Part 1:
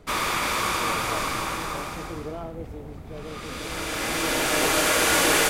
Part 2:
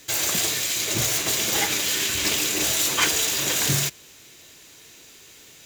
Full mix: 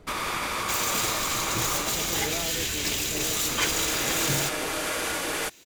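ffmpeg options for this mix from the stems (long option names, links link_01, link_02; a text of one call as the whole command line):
ffmpeg -i stem1.wav -i stem2.wav -filter_complex "[0:a]alimiter=limit=-19dB:level=0:latency=1:release=279,volume=-0.5dB[link_01];[1:a]adelay=600,volume=-5dB[link_02];[link_01][link_02]amix=inputs=2:normalize=0" out.wav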